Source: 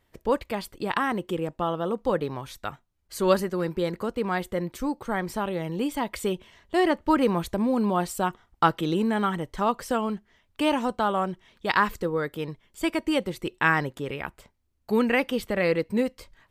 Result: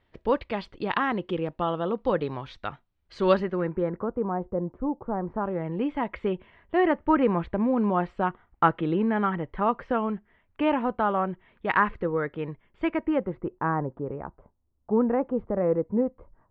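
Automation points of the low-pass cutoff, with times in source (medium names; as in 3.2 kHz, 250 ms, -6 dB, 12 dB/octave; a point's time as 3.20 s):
low-pass 24 dB/octave
3.30 s 4 kHz
3.75 s 1.9 kHz
4.37 s 1 kHz
5.15 s 1 kHz
5.81 s 2.4 kHz
12.85 s 2.4 kHz
13.64 s 1.1 kHz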